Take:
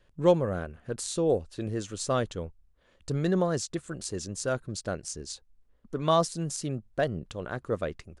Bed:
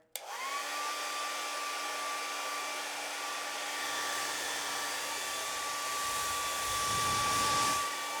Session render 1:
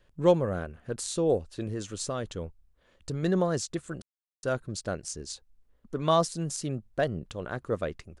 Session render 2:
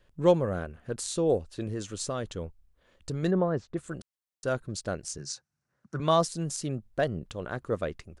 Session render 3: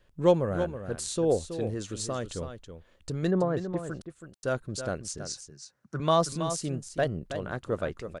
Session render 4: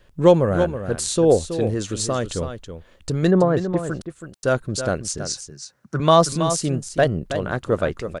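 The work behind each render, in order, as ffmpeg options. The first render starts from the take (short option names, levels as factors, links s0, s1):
-filter_complex "[0:a]asettb=1/sr,asplit=3[s0][s1][s2];[s0]atrim=end=1.634[s3];[s1]atrim=start=1.63:end=3.23,asetpts=PTS-STARTPTS,afade=t=in:d=0.004:c=qsin,afade=t=out:st=1.596:d=0.004:c=qsin,acompressor=threshold=0.0398:ratio=4:attack=3.2:release=140:knee=1:detection=peak[s4];[s2]atrim=start=3.226[s5];[s3][s4]acrossfade=d=0.004:c1=hsin:c2=qsin[s6];[s6][s5]acrossfade=d=0.004:c1=qsin:c2=hsin,asplit=3[s7][s8][s9];[s7]atrim=end=4.02,asetpts=PTS-STARTPTS,afade=t=out:st=4.016:d=0.004:c=hsin[s10];[s8]atrim=start=4.02:end=4.43,asetpts=PTS-STARTPTS,volume=0[s11];[s9]atrim=start=4.43,asetpts=PTS-STARTPTS,afade=t=in:d=0.004:c=hsin[s12];[s10][s11][s12]concat=n=3:v=0:a=1"
-filter_complex "[0:a]asplit=3[s0][s1][s2];[s0]afade=t=out:st=3.3:d=0.02[s3];[s1]lowpass=1600,afade=t=in:st=3.3:d=0.02,afade=t=out:st=3.76:d=0.02[s4];[s2]afade=t=in:st=3.76:d=0.02[s5];[s3][s4][s5]amix=inputs=3:normalize=0,asettb=1/sr,asplit=3[s6][s7][s8];[s6]atrim=end=5.184[s9];[s7]atrim=start=5.18:end=6,asetpts=PTS-STARTPTS,afade=t=in:d=0.004:c=qsin,afade=t=out:st=0.816:d=0.004:c=qsin,highpass=f=110:w=0.5412,highpass=f=110:w=1.3066,equalizer=f=140:t=q:w=4:g=8,equalizer=f=270:t=q:w=4:g=-7,equalizer=f=450:t=q:w=4:g=-9,equalizer=f=1500:t=q:w=4:g=9,equalizer=f=3300:t=q:w=4:g=-9,equalizer=f=5700:t=q:w=4:g=7,lowpass=f=9700:w=0.5412,lowpass=f=9700:w=1.3066[s10];[s8]atrim=start=5.996[s11];[s9][s10]acrossfade=d=0.004:c1=hsin:c2=qsin[s12];[s12][s11]acrossfade=d=0.004:c1=qsin:c2=hsin"
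-af "aecho=1:1:324:0.335"
-af "volume=2.99,alimiter=limit=0.708:level=0:latency=1"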